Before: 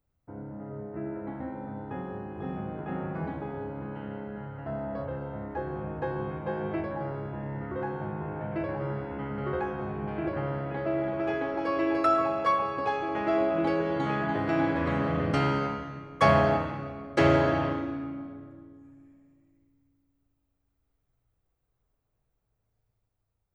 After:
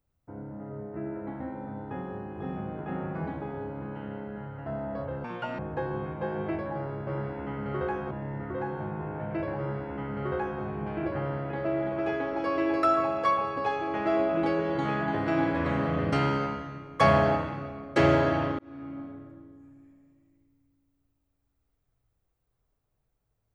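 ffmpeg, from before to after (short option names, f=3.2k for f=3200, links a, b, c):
-filter_complex "[0:a]asplit=6[a][b][c][d][e][f];[a]atrim=end=5.244[g];[b]atrim=start=5.24:end=5.84,asetpts=PTS-STARTPTS,asetrate=75852,aresample=44100[h];[c]atrim=start=5.836:end=7.322[i];[d]atrim=start=8.788:end=9.832[j];[e]atrim=start=7.318:end=17.8,asetpts=PTS-STARTPTS,afade=t=out:st=10.478:d=0.004:c=hsin[k];[f]atrim=start=17.8,asetpts=PTS-STARTPTS,afade=t=in:d=0.42[l];[g][h]acrossfade=d=0.004:c1=hsin:c2=hsin[m];[m][i]acrossfade=d=0.004:c1=hsin:c2=hsin[n];[n][j]acrossfade=d=0.004:c1=hsin:c2=hsin[o];[k][l]concat=n=2:v=0:a=1[p];[o][p]acrossfade=d=0.004:c1=hsin:c2=hsin"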